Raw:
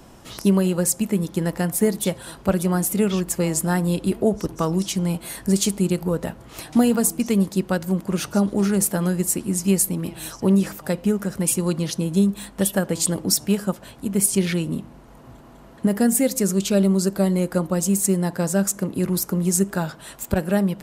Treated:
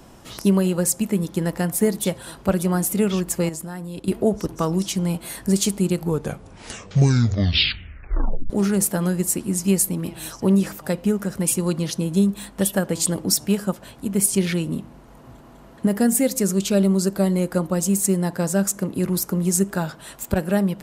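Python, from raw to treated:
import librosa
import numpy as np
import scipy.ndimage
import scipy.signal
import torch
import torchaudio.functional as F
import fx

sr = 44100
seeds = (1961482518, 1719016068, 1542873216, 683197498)

y = fx.level_steps(x, sr, step_db=16, at=(3.49, 4.08))
y = fx.edit(y, sr, fx.tape_stop(start_s=5.94, length_s=2.56), tone=tone)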